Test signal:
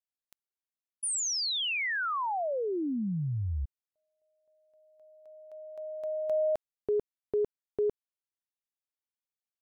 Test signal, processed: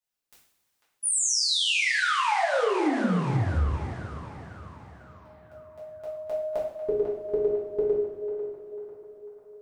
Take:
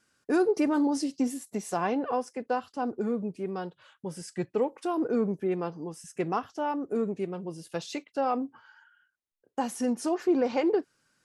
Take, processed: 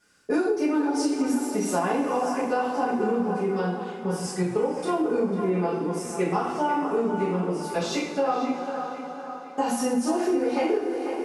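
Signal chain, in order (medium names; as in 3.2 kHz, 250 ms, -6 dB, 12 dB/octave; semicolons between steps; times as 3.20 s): two-slope reverb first 0.57 s, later 4.7 s, from -18 dB, DRR -8.5 dB; compression 6:1, threshold -21 dBFS; band-passed feedback delay 496 ms, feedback 58%, band-pass 1.2 kHz, level -6.5 dB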